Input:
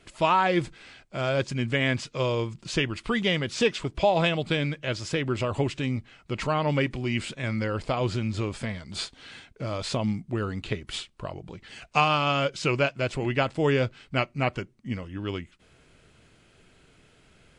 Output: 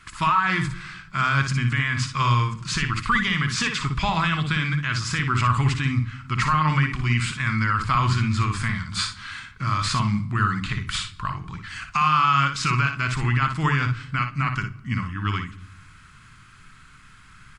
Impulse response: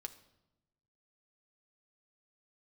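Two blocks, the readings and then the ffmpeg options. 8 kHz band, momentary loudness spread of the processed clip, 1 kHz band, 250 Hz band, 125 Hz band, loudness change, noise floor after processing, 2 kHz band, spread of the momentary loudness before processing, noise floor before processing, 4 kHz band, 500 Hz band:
+7.5 dB, 8 LU, +6.5 dB, +1.5 dB, +7.5 dB, +4.5 dB, −49 dBFS, +6.5 dB, 13 LU, −60 dBFS, +3.0 dB, −13.5 dB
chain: -filter_complex "[0:a]firequalizer=gain_entry='entry(140,0);entry(530,-25);entry(1100,10);entry(2900,-2);entry(4700,1)':delay=0.05:min_phase=1,alimiter=limit=-18dB:level=0:latency=1,asplit=2[link_01][link_02];[1:a]atrim=start_sample=2205,lowshelf=frequency=340:gain=8.5,adelay=58[link_03];[link_02][link_03]afir=irnorm=-1:irlink=0,volume=-3.5dB[link_04];[link_01][link_04]amix=inputs=2:normalize=0,volume=6dB"

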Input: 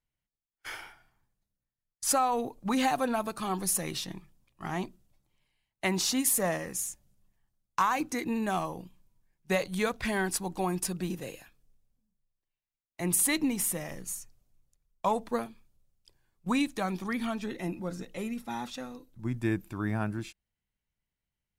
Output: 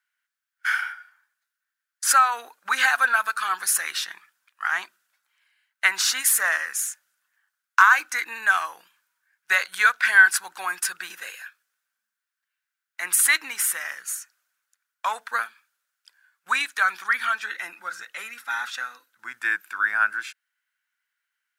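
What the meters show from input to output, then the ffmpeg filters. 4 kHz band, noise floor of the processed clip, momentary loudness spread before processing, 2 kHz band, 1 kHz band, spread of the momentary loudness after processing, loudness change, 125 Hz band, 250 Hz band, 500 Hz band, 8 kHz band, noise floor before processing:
+8.0 dB, below −85 dBFS, 16 LU, +18.0 dB, +7.5 dB, 17 LU, +8.5 dB, below −30 dB, below −20 dB, −10.0 dB, +6.5 dB, below −85 dBFS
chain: -af "highpass=frequency=1500:width_type=q:width=6.9,volume=6.5dB"

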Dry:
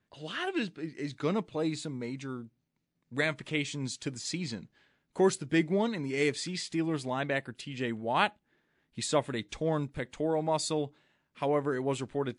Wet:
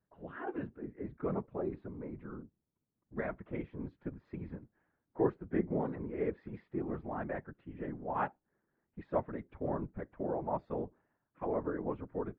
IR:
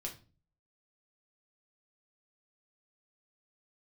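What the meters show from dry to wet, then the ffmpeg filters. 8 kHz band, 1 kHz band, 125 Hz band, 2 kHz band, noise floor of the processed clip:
below −40 dB, −6.0 dB, −6.5 dB, −13.5 dB, below −85 dBFS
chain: -af "lowpass=frequency=1500:width=0.5412,lowpass=frequency=1500:width=1.3066,afftfilt=real='hypot(re,im)*cos(2*PI*random(0))':imag='hypot(re,im)*sin(2*PI*random(1))':win_size=512:overlap=0.75"

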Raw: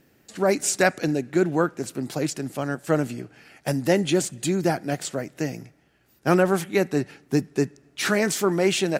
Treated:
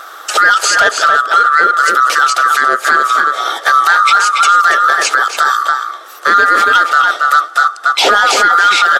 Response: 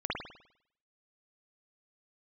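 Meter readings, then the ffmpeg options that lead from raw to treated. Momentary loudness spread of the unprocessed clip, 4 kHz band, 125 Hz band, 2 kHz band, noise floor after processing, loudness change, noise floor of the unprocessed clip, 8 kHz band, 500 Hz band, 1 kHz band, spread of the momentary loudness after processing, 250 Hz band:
10 LU, +17.5 dB, below −15 dB, +21.0 dB, −32 dBFS, +15.0 dB, −61 dBFS, +10.5 dB, +1.0 dB, +23.5 dB, 5 LU, −9.5 dB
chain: -filter_complex "[0:a]afftfilt=real='real(if(lt(b,960),b+48*(1-2*mod(floor(b/48),2)),b),0)':imag='imag(if(lt(b,960),b+48*(1-2*mod(floor(b/48),2)),b),0)':win_size=2048:overlap=0.75,highpass=frequency=370:width=0.5412,highpass=frequency=370:width=1.3066,acrossover=split=6000[link_01][link_02];[link_02]acompressor=threshold=-46dB:ratio=4:attack=1:release=60[link_03];[link_01][link_03]amix=inputs=2:normalize=0,highshelf=frequency=9200:gain=-4.5,acompressor=threshold=-38dB:ratio=2,asoftclip=type=tanh:threshold=-24.5dB,asplit=2[link_04][link_05];[link_05]adelay=279.9,volume=-6dB,highshelf=frequency=4000:gain=-6.3[link_06];[link_04][link_06]amix=inputs=2:normalize=0,aresample=32000,aresample=44100,alimiter=level_in=30dB:limit=-1dB:release=50:level=0:latency=1,volume=-1dB"

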